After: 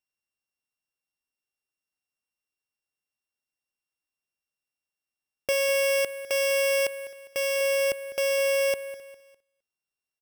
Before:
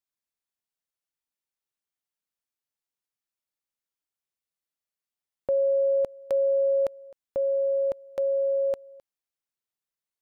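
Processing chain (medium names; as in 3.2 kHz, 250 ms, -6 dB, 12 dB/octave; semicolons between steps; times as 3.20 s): sorted samples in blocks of 16 samples; 5.52–7.61 s: bass shelf 370 Hz -8 dB; feedback delay 202 ms, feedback 38%, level -15.5 dB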